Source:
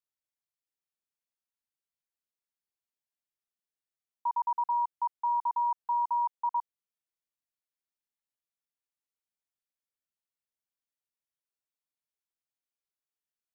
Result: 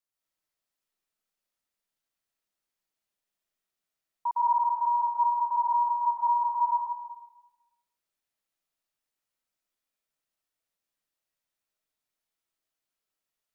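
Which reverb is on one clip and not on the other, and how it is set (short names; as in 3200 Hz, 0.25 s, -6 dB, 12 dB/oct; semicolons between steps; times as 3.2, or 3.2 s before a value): digital reverb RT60 1.1 s, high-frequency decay 0.65×, pre-delay 0.1 s, DRR -5.5 dB; gain +1 dB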